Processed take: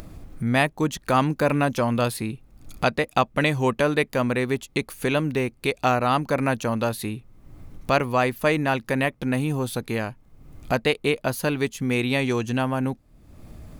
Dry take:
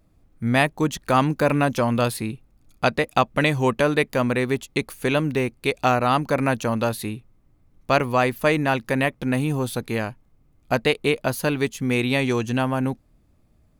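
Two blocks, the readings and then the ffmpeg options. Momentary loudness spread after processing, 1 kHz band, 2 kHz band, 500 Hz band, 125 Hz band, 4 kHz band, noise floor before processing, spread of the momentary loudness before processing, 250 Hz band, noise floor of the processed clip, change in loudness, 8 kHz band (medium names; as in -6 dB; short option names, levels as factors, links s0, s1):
8 LU, -1.5 dB, -1.5 dB, -1.5 dB, -1.5 dB, -1.5 dB, -61 dBFS, 8 LU, -1.5 dB, -56 dBFS, -1.5 dB, -1.0 dB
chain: -af "acompressor=mode=upward:threshold=0.0794:ratio=2.5,volume=0.841"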